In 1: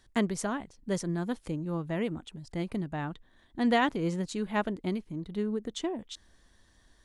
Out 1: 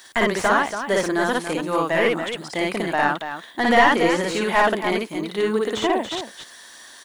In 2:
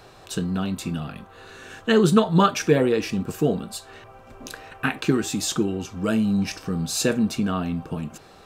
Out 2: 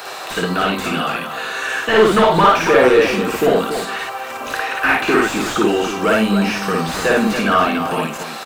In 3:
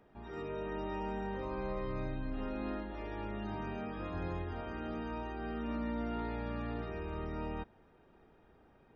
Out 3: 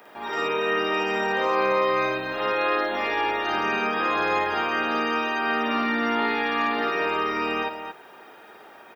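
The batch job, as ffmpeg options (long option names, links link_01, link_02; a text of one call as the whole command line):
ffmpeg -i in.wav -filter_complex "[0:a]aemphasis=mode=production:type=riaa,asplit=2[link_01][link_02];[link_02]highpass=frequency=720:poles=1,volume=30dB,asoftclip=type=tanh:threshold=-1.5dB[link_03];[link_01][link_03]amix=inputs=2:normalize=0,lowpass=frequency=2300:poles=1,volume=-6dB,acrossover=split=2700[link_04][link_05];[link_05]acompressor=threshold=-32dB:ratio=4:attack=1:release=60[link_06];[link_04][link_06]amix=inputs=2:normalize=0,asplit=2[link_07][link_08];[link_08]aecho=0:1:55.39|282.8:1|0.398[link_09];[link_07][link_09]amix=inputs=2:normalize=0,volume=-3.5dB" out.wav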